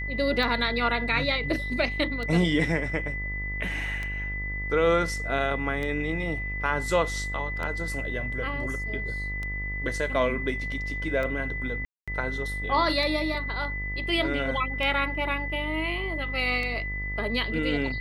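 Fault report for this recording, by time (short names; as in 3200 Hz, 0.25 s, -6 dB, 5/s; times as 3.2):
buzz 50 Hz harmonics 26 -34 dBFS
tick 33 1/3 rpm
tone 2000 Hz -32 dBFS
11.85–12.08 gap 0.226 s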